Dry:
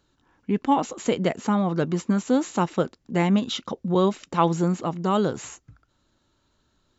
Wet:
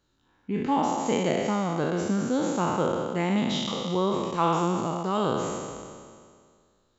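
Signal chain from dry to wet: spectral trails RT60 2.04 s; gain -6.5 dB

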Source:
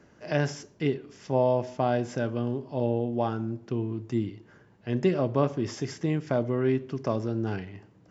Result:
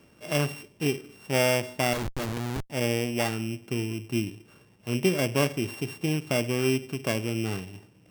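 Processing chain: sample sorter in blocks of 16 samples; 1.93–2.7 Schmitt trigger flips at -32.5 dBFS

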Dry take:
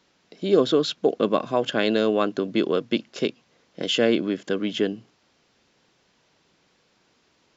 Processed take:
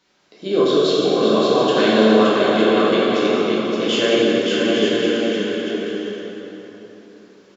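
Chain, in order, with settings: low shelf 430 Hz -5 dB; bouncing-ball echo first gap 0.57 s, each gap 0.6×, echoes 5; plate-style reverb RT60 3.9 s, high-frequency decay 0.6×, DRR -8 dB; gain -1.5 dB

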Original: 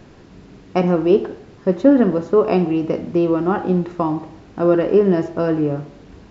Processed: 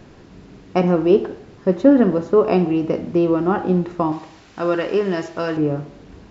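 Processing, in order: 4.12–5.57 tilt shelf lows -8 dB

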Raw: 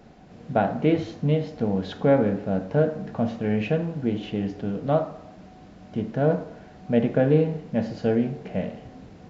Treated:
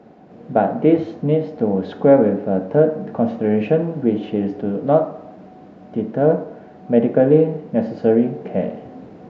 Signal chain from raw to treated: HPF 360 Hz 12 dB/oct; tilt -4.5 dB/oct; in parallel at +2 dB: vocal rider within 3 dB 2 s; on the sum: gain -2.5 dB

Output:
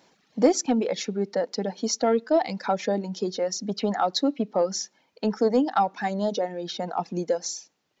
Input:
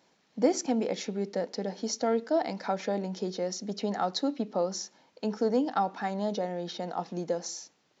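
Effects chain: reverb removal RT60 1.6 s; in parallel at -9 dB: soft clip -23.5 dBFS, distortion -13 dB; on the sum: gain +4 dB

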